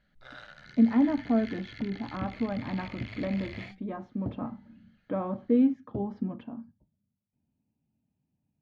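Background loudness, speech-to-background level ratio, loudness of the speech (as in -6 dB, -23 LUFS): -45.5 LUFS, 15.5 dB, -30.0 LUFS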